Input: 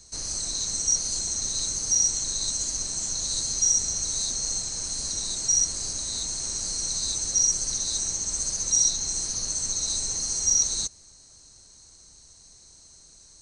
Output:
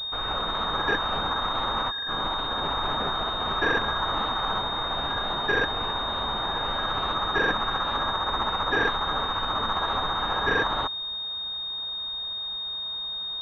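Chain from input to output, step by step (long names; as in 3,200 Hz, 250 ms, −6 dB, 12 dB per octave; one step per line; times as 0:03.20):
0:01.78–0:03.46: compressor whose output falls as the input rises −31 dBFS, ratio −1
switching amplifier with a slow clock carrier 3,700 Hz
level +2.5 dB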